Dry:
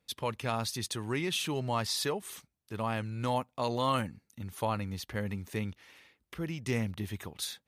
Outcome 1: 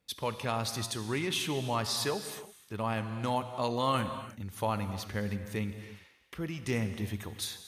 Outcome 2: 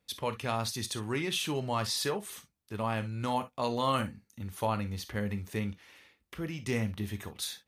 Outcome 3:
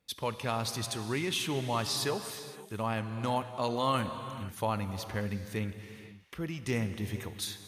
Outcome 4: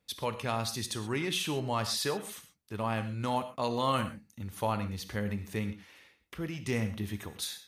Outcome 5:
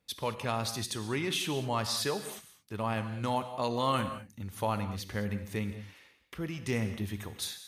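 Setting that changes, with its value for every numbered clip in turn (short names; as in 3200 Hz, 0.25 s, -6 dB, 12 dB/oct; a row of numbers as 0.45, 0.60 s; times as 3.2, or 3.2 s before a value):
non-linear reverb, gate: 350, 80, 540, 150, 240 ms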